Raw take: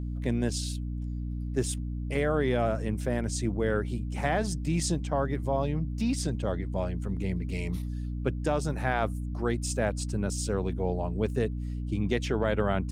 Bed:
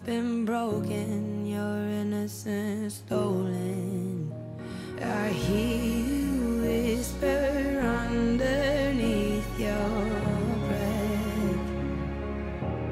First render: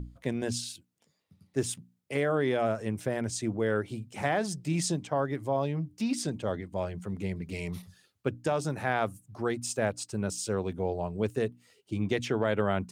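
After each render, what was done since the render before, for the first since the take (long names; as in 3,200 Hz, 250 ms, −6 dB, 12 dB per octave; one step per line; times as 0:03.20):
mains-hum notches 60/120/180/240/300 Hz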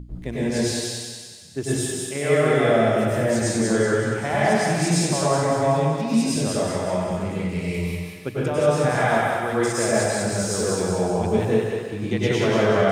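on a send: feedback echo with a high-pass in the loop 188 ms, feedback 52%, high-pass 780 Hz, level −3 dB
on the sum: dense smooth reverb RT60 1.3 s, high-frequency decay 0.75×, pre-delay 85 ms, DRR −8 dB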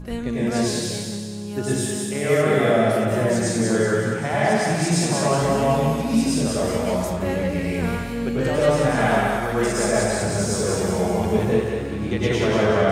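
mix in bed −0.5 dB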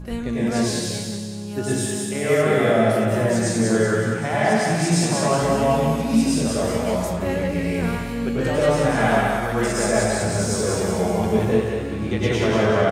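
double-tracking delay 18 ms −11 dB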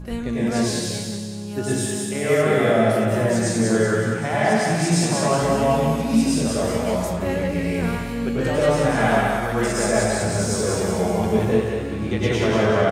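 no processing that can be heard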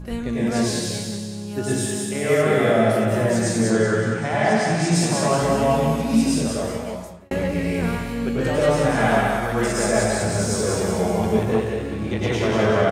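0:03.70–0:04.95: low-pass filter 8,200 Hz
0:06.34–0:07.31: fade out
0:11.40–0:12.59: saturating transformer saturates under 410 Hz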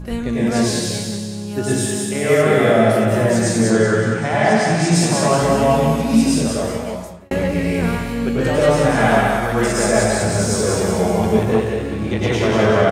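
level +4 dB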